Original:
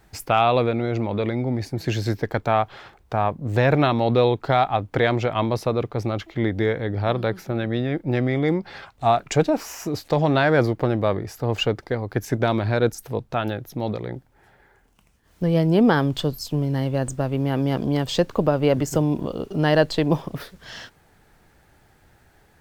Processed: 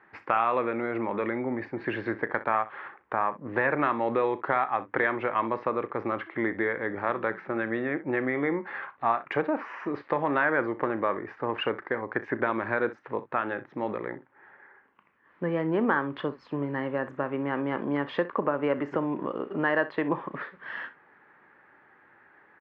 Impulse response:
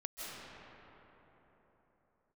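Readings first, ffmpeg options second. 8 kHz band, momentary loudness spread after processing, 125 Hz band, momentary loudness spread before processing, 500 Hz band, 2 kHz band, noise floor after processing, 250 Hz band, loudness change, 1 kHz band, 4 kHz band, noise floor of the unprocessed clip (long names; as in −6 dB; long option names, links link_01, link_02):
below −35 dB, 8 LU, −17.5 dB, 10 LU, −7.0 dB, 0.0 dB, −60 dBFS, −7.5 dB, −6.5 dB, −4.0 dB, −14.0 dB, −58 dBFS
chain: -af "highpass=370,equalizer=frequency=460:width_type=q:width=4:gain=-4,equalizer=frequency=690:width_type=q:width=4:gain=-9,equalizer=frequency=1100:width_type=q:width=4:gain=5,equalizer=frequency=1800:width_type=q:width=4:gain=5,lowpass=frequency=2100:width=0.5412,lowpass=frequency=2100:width=1.3066,acompressor=threshold=-28dB:ratio=2,aecho=1:1:35|63:0.168|0.15,volume=2.5dB"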